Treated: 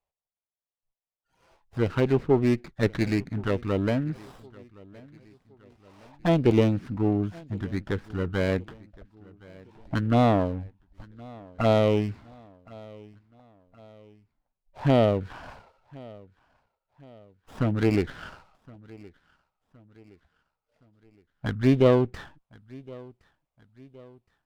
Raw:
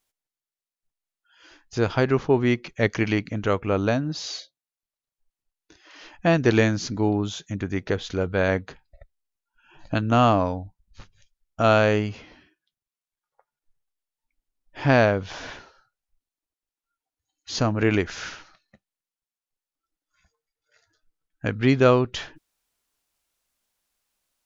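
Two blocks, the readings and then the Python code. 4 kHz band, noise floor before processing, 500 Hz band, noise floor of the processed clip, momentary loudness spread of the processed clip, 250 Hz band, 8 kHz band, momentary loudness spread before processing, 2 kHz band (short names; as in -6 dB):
-7.0 dB, under -85 dBFS, -2.5 dB, under -85 dBFS, 22 LU, -1.0 dB, n/a, 14 LU, -9.0 dB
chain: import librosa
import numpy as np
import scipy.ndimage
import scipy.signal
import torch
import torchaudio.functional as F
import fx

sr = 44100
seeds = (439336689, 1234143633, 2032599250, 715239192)

p1 = fx.env_phaser(x, sr, low_hz=280.0, high_hz=1600.0, full_db=-15.0)
p2 = scipy.signal.lfilter(np.full(7, 1.0 / 7), 1.0, p1)
p3 = p2 + fx.echo_feedback(p2, sr, ms=1067, feedback_pct=46, wet_db=-23.0, dry=0)
y = fx.running_max(p3, sr, window=9)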